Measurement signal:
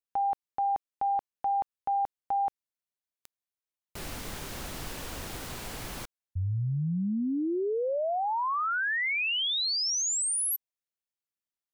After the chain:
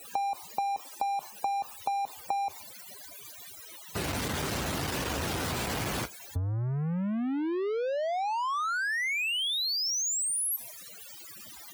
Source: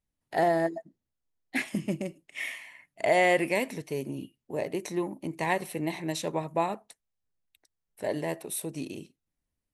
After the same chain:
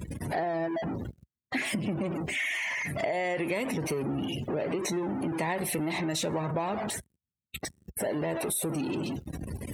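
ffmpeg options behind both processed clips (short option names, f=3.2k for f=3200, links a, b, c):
-af "aeval=exprs='val(0)+0.5*0.0447*sgn(val(0))':c=same,afftdn=nr=33:nf=-38,highpass=f=63:w=0.5412,highpass=f=63:w=1.3066,acompressor=threshold=-34dB:ratio=12:attack=63:release=51:knee=6:detection=rms,volume=3dB"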